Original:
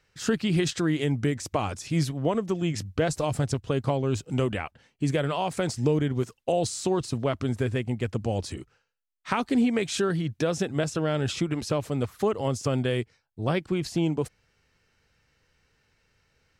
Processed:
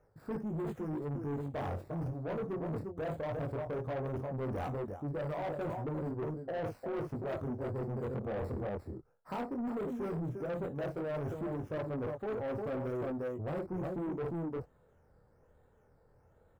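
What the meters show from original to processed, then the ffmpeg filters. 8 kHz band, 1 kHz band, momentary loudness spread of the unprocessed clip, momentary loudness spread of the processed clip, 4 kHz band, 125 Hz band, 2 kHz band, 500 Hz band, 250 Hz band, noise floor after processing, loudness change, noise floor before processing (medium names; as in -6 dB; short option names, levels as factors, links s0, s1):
under -30 dB, -9.0 dB, 5 LU, 2 LU, -24.5 dB, -10.5 dB, -13.5 dB, -8.5 dB, -11.0 dB, -67 dBFS, -10.5 dB, -71 dBFS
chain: -filter_complex "[0:a]firequalizer=gain_entry='entry(260,0);entry(560,6);entry(2500,-24)':delay=0.05:min_phase=1,acrossover=split=2000[s0][s1];[s1]acrusher=samples=11:mix=1:aa=0.000001:lfo=1:lforange=6.6:lforate=1.2[s2];[s0][s2]amix=inputs=2:normalize=0,aecho=1:1:56|353:0.237|0.355,flanger=delay=18.5:depth=6.7:speed=0.16,highshelf=f=4700:g=7,areverse,acompressor=threshold=0.02:ratio=16,areverse,asoftclip=type=tanh:threshold=0.0112,volume=2"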